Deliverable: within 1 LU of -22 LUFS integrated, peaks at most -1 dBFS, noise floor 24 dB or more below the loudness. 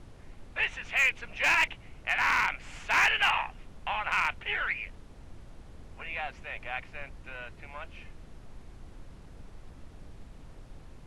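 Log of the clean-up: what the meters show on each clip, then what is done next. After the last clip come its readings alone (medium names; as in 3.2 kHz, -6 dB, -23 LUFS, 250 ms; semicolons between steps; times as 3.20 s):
clipped samples 0.2%; clipping level -17.0 dBFS; noise floor -51 dBFS; noise floor target -53 dBFS; loudness -28.5 LUFS; peak level -17.0 dBFS; loudness target -22.0 LUFS
-> clip repair -17 dBFS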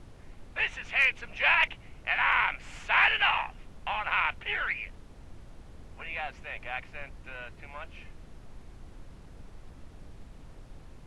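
clipped samples 0.0%; noise floor -51 dBFS; noise floor target -52 dBFS
-> noise print and reduce 6 dB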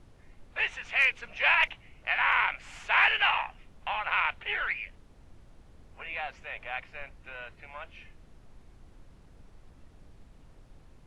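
noise floor -57 dBFS; loudness -27.5 LUFS; peak level -8.5 dBFS; loudness target -22.0 LUFS
-> trim +5.5 dB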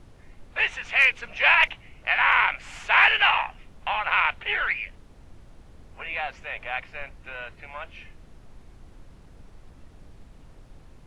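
loudness -22.0 LUFS; peak level -3.0 dBFS; noise floor -51 dBFS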